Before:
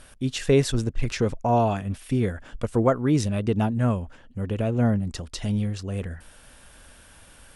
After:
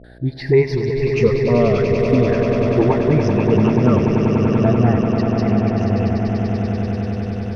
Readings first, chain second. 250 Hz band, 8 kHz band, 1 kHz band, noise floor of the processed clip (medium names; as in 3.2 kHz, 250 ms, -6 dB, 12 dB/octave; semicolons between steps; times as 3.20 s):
+9.0 dB, no reading, +4.5 dB, -29 dBFS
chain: drifting ripple filter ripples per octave 0.8, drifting +0.43 Hz, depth 23 dB; phase dispersion highs, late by 43 ms, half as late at 480 Hz; mains buzz 60 Hz, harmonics 11, -44 dBFS -3 dB/octave; distance through air 250 m; echo with a slow build-up 97 ms, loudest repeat 8, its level -9 dB